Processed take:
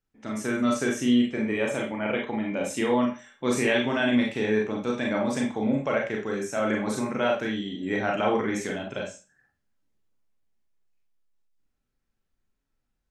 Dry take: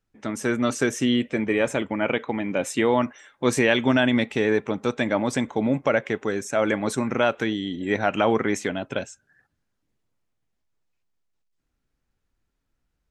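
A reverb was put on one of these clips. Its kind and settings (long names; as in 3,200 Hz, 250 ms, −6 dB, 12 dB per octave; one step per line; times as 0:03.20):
four-comb reverb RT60 0.31 s, combs from 29 ms, DRR −1 dB
level −7 dB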